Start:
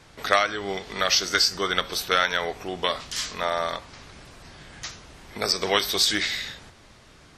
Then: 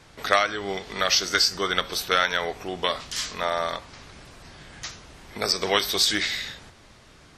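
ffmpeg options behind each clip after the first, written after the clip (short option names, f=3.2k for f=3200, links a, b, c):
-af anull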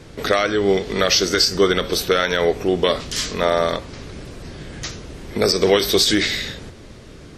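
-af "lowshelf=f=610:t=q:w=1.5:g=7.5,alimiter=level_in=9.5dB:limit=-1dB:release=50:level=0:latency=1,volume=-4dB"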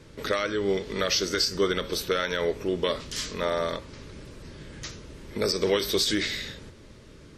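-af "asuperstop=centerf=730:order=4:qfactor=6,volume=-8.5dB"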